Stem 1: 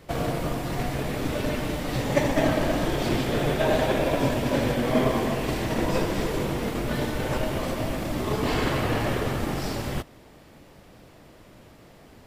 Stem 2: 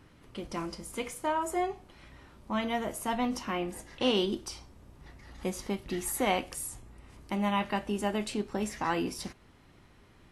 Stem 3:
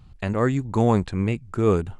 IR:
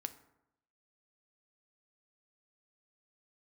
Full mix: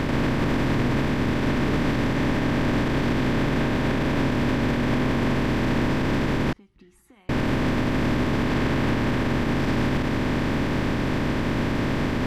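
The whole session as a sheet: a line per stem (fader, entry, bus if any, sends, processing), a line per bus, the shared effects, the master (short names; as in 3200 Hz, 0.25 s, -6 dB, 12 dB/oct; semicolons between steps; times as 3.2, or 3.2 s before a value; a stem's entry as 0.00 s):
+1.5 dB, 0.00 s, muted 6.53–7.29, no send, no echo send, per-bin compression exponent 0.2
-10.0 dB, 0.90 s, no send, echo send -20 dB, compressor 10:1, threshold -36 dBFS, peak gain reduction 15 dB
-6.0 dB, 0.00 s, no send, no echo send, dry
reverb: off
echo: echo 0.179 s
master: LPF 2000 Hz 6 dB/oct; bell 610 Hz -13.5 dB 0.88 oct; limiter -14.5 dBFS, peak gain reduction 8 dB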